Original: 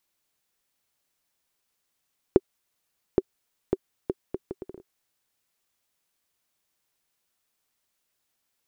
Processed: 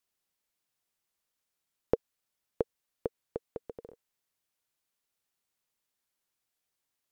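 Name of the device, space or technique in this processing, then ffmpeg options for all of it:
nightcore: -af "asetrate=53802,aresample=44100,volume=-6dB"

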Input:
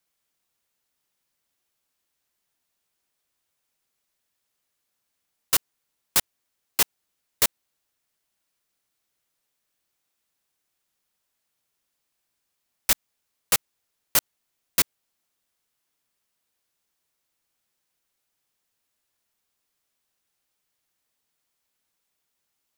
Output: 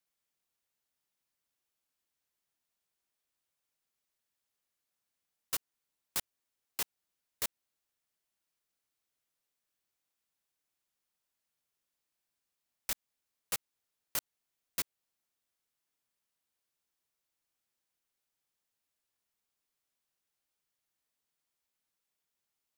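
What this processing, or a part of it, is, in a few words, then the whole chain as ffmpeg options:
stacked limiters: -af "alimiter=limit=-8.5dB:level=0:latency=1:release=204,alimiter=limit=-12.5dB:level=0:latency=1:release=35,volume=-8.5dB"

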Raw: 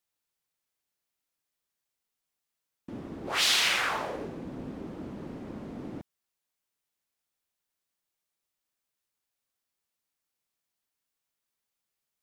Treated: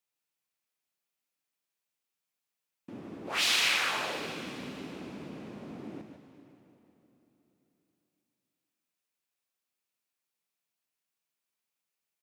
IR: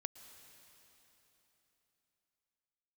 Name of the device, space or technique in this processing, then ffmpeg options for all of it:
PA in a hall: -filter_complex "[0:a]highpass=120,equalizer=f=2.5k:t=o:w=0.32:g=4.5,aecho=1:1:148:0.398[a];[1:a]atrim=start_sample=2205[b];[a][b]afir=irnorm=-1:irlink=0"

